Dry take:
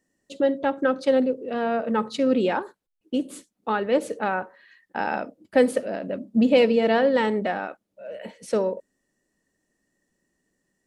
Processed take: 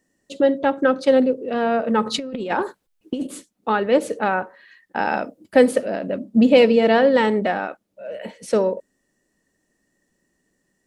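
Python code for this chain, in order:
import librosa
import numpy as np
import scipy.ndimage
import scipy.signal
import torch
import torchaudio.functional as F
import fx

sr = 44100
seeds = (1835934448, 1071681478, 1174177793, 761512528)

y = fx.over_compress(x, sr, threshold_db=-27.0, ratio=-0.5, at=(2.06, 3.27))
y = fx.high_shelf(y, sr, hz=6800.0, db=6.5, at=(5.06, 5.57))
y = y * 10.0 ** (4.5 / 20.0)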